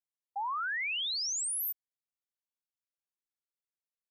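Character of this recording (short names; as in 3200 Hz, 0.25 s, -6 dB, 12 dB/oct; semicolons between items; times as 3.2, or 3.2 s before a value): noise floor -96 dBFS; spectral tilt -3.5 dB/oct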